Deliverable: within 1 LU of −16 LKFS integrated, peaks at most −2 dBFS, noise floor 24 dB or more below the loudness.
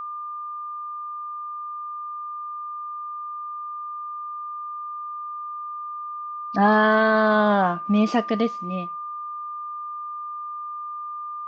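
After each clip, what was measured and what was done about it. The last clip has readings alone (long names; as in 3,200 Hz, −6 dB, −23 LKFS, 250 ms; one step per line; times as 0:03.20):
interfering tone 1,200 Hz; level of the tone −30 dBFS; integrated loudness −26.0 LKFS; sample peak −7.0 dBFS; target loudness −16.0 LKFS
→ notch filter 1,200 Hz, Q 30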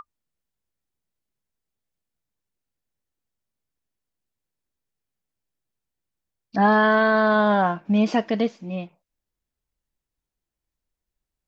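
interfering tone none found; integrated loudness −20.0 LKFS; sample peak −8.0 dBFS; target loudness −16.0 LKFS
→ level +4 dB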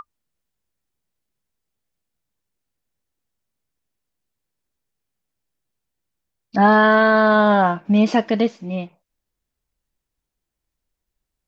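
integrated loudness −16.0 LKFS; sample peak −4.0 dBFS; background noise floor −82 dBFS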